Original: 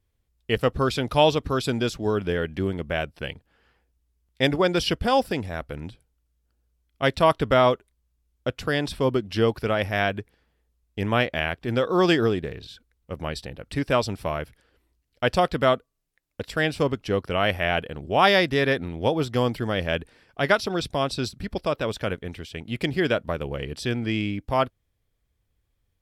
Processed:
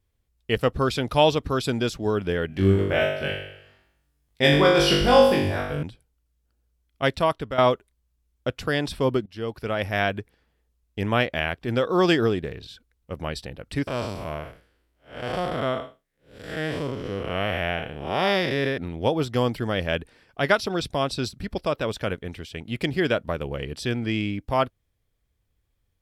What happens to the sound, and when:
2.47–5.83 s: flutter echo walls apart 3.5 m, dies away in 0.77 s
7.02–7.58 s: fade out, to -12.5 dB
9.26–9.95 s: fade in, from -20 dB
13.87–18.78 s: spectral blur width 200 ms

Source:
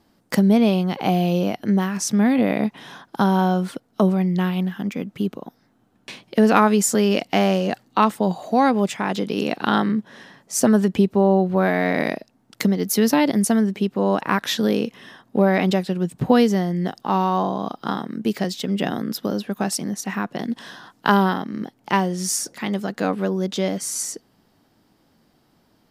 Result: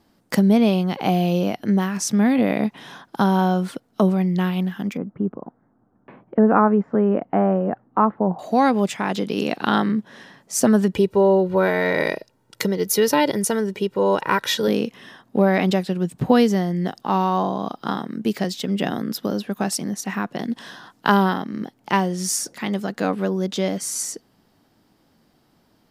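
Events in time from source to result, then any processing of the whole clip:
4.97–8.39 s: low-pass 1.4 kHz 24 dB/octave
10.93–14.68 s: comb 2.1 ms

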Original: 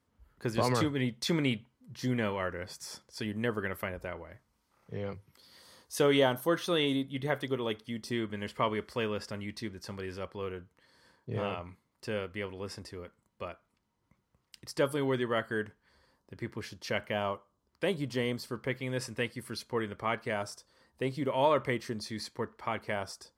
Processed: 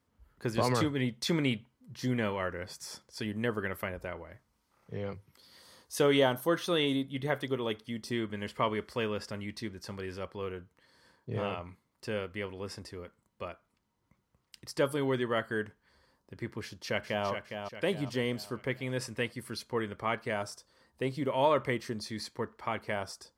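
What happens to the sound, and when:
16.62–17.27 s: echo throw 410 ms, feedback 45%, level -7 dB

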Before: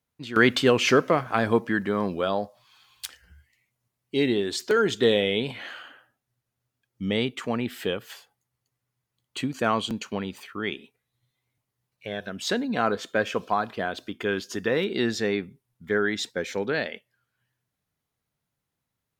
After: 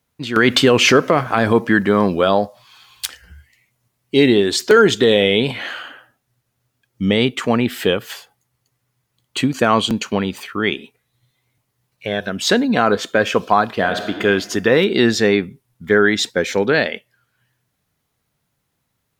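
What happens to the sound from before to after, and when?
13.71–14.23 s: reverb throw, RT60 1.4 s, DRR 5.5 dB
whole clip: loudness maximiser +12 dB; trim -1 dB

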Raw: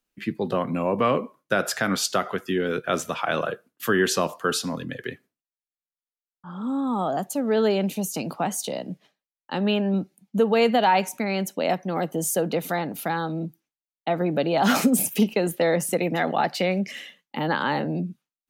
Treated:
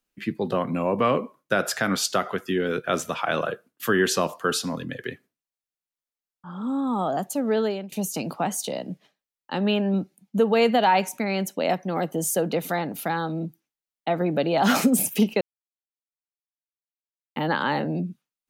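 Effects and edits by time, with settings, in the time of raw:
7.49–7.92 s: fade out, to -21.5 dB
15.41–17.36 s: mute

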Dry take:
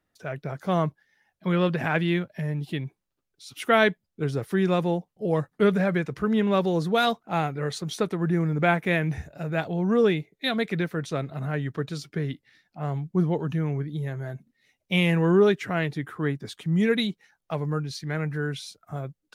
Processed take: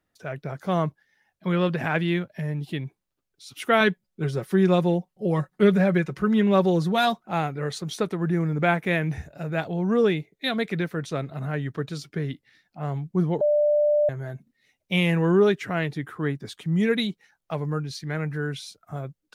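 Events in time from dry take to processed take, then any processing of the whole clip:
3.80–7.31 s: comb 5.4 ms, depth 57%
13.41–14.09 s: bleep 593 Hz -17 dBFS

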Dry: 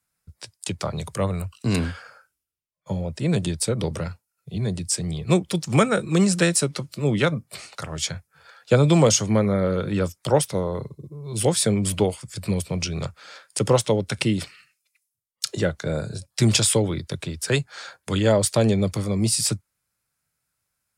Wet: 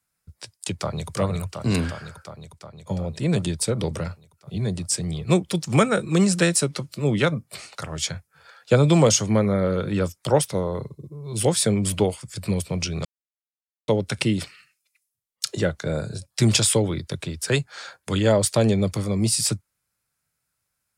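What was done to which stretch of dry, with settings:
0.73–1.14 s: echo throw 360 ms, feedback 75%, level -4.5 dB
13.05–13.88 s: mute

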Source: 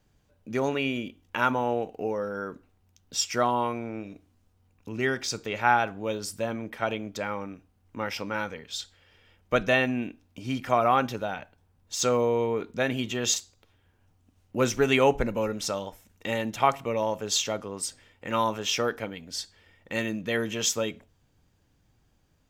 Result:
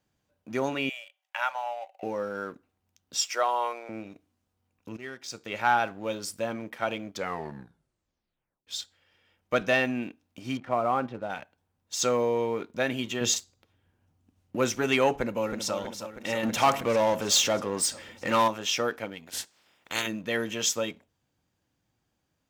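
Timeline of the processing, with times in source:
0.89–2.03 s: rippled Chebyshev high-pass 550 Hz, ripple 6 dB
3.23–3.89 s: high-pass 450 Hz 24 dB/octave
4.97–5.58 s: fade in quadratic, from -13 dB
7.10 s: tape stop 1.57 s
10.57–11.30 s: tape spacing loss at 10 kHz 40 dB
13.21–14.56 s: bass shelf 350 Hz +9 dB
15.15–15.74 s: echo throw 320 ms, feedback 65%, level -8.5 dB
16.43–18.48 s: power-law waveshaper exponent 0.7
19.26–20.06 s: spectral peaks clipped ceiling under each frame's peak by 24 dB
whole clip: waveshaping leveller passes 1; high-pass 170 Hz 6 dB/octave; band-stop 430 Hz, Q 14; trim -4 dB

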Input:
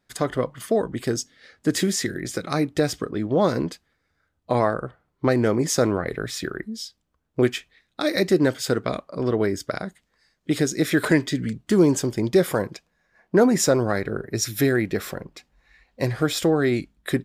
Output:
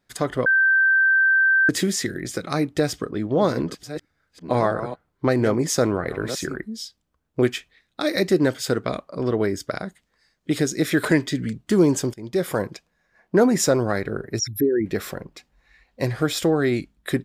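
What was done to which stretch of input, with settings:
0.46–1.69 s: bleep 1.56 kHz -14 dBFS
2.71–6.56 s: chunks repeated in reverse 671 ms, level -11 dB
12.14–12.60 s: fade in, from -21 dB
14.39–14.86 s: resonances exaggerated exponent 3

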